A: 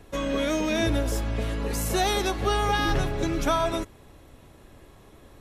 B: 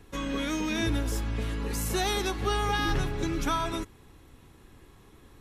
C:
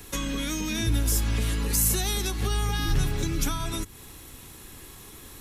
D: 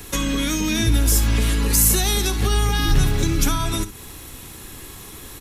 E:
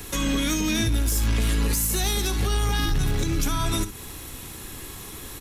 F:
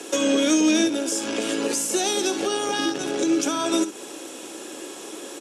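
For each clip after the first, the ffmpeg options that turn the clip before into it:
-af "equalizer=f=610:w=3.8:g=-12,volume=0.75"
-filter_complex "[0:a]acrossover=split=220[s0][s1];[s1]acompressor=threshold=0.00891:ratio=6[s2];[s0][s2]amix=inputs=2:normalize=0,crystalizer=i=4.5:c=0,volume=1.88"
-af "aecho=1:1:58|68:0.158|0.168,volume=2.24"
-af "alimiter=limit=0.237:level=0:latency=1:release=125,asoftclip=type=tanh:threshold=0.178"
-af "highpass=f=280:w=0.5412,highpass=f=280:w=1.3066,equalizer=f=330:t=q:w=4:g=6,equalizer=f=570:t=q:w=4:g=9,equalizer=f=1100:t=q:w=4:g=-6,equalizer=f=2000:t=q:w=4:g=-9,equalizer=f=4100:t=q:w=4:g=-7,lowpass=f=8500:w=0.5412,lowpass=f=8500:w=1.3066,volume=1.78"

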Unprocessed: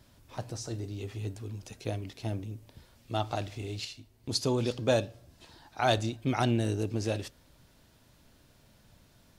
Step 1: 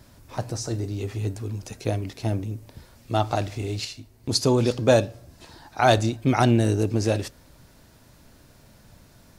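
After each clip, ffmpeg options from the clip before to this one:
-af "equalizer=f=3200:t=o:w=0.65:g=-5,volume=2.66"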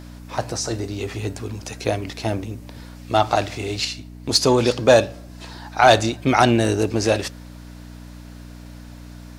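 -filter_complex "[0:a]aeval=exprs='val(0)+0.0158*(sin(2*PI*60*n/s)+sin(2*PI*2*60*n/s)/2+sin(2*PI*3*60*n/s)/3+sin(2*PI*4*60*n/s)/4+sin(2*PI*5*60*n/s)/5)':c=same,asplit=2[s0][s1];[s1]highpass=f=720:p=1,volume=3.98,asoftclip=type=tanh:threshold=0.708[s2];[s0][s2]amix=inputs=2:normalize=0,lowpass=f=5500:p=1,volume=0.501,volume=1.33"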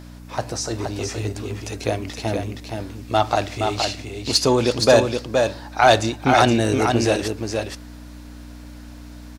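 -af "aecho=1:1:470:0.562,volume=0.891"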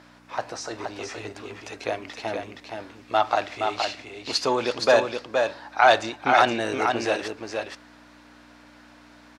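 -af "bandpass=f=1400:t=q:w=0.63:csg=0"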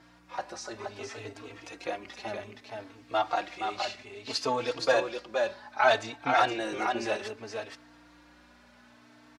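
-filter_complex "[0:a]asplit=2[s0][s1];[s1]adelay=3.9,afreqshift=0.63[s2];[s0][s2]amix=inputs=2:normalize=1,volume=0.708"

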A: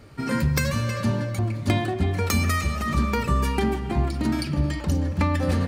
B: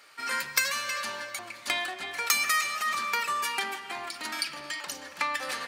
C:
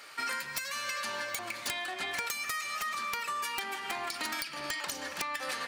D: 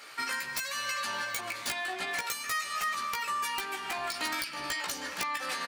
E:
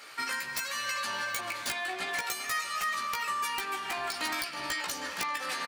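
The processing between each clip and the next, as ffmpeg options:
-af "highpass=1300,volume=1.5"
-af "acompressor=threshold=0.0141:ratio=16,aeval=exprs='(mod(28.2*val(0)+1,2)-1)/28.2':c=same,volume=1.88"
-filter_complex "[0:a]asplit=2[s0][s1];[s1]adelay=16,volume=0.668[s2];[s0][s2]amix=inputs=2:normalize=0"
-filter_complex "[0:a]asplit=2[s0][s1];[s1]adelay=390,highpass=300,lowpass=3400,asoftclip=type=hard:threshold=0.0355,volume=0.355[s2];[s0][s2]amix=inputs=2:normalize=0"

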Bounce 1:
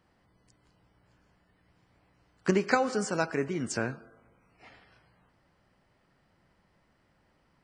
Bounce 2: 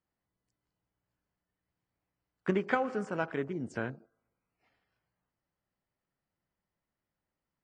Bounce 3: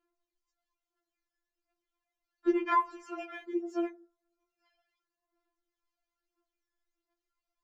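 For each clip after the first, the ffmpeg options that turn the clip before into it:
-af "afwtdn=0.00891,volume=0.631"
-af "aresample=16000,aresample=44100,aphaser=in_gain=1:out_gain=1:delay=3.5:decay=0.7:speed=0.37:type=sinusoidal,afftfilt=real='re*4*eq(mod(b,16),0)':imag='im*4*eq(mod(b,16),0)':win_size=2048:overlap=0.75"

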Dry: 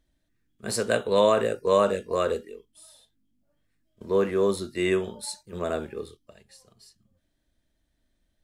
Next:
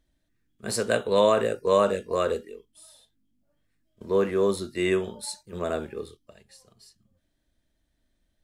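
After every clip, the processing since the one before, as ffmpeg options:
-af anull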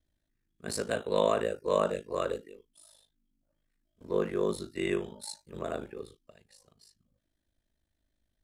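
-af "aeval=exprs='val(0)*sin(2*PI*26*n/s)':c=same,volume=0.668"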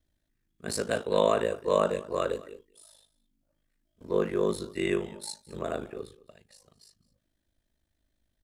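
-af "aecho=1:1:213:0.0944,volume=1.33"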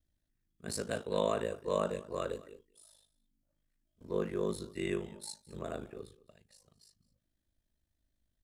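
-af "bass=f=250:g=5,treble=f=4000:g=3,volume=0.398"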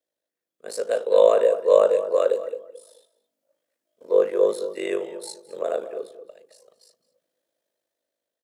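-filter_complex "[0:a]dynaudnorm=f=270:g=7:m=2.11,highpass=f=510:t=q:w=4.9,asplit=2[s0][s1];[s1]adelay=219,lowpass=f=920:p=1,volume=0.282,asplit=2[s2][s3];[s3]adelay=219,lowpass=f=920:p=1,volume=0.27,asplit=2[s4][s5];[s5]adelay=219,lowpass=f=920:p=1,volume=0.27[s6];[s0][s2][s4][s6]amix=inputs=4:normalize=0"

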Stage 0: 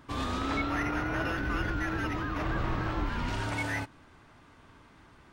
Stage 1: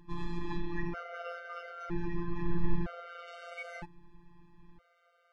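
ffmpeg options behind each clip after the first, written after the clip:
-af "afftfilt=real='hypot(re,im)*cos(PI*b)':imag='0':win_size=1024:overlap=0.75,aemphasis=mode=reproduction:type=bsi,afftfilt=real='re*gt(sin(2*PI*0.52*pts/sr)*(1-2*mod(floor(b*sr/1024/390),2)),0)':imag='im*gt(sin(2*PI*0.52*pts/sr)*(1-2*mod(floor(b*sr/1024/390),2)),0)':win_size=1024:overlap=0.75,volume=0.75"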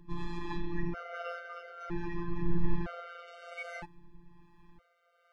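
-filter_complex "[0:a]acrossover=split=410[s0][s1];[s0]aeval=exprs='val(0)*(1-0.5/2+0.5/2*cos(2*PI*1.2*n/s))':c=same[s2];[s1]aeval=exprs='val(0)*(1-0.5/2-0.5/2*cos(2*PI*1.2*n/s))':c=same[s3];[s2][s3]amix=inputs=2:normalize=0,volume=1.33"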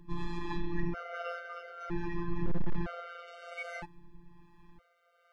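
-af "asoftclip=type=hard:threshold=0.0794,volume=1.12"

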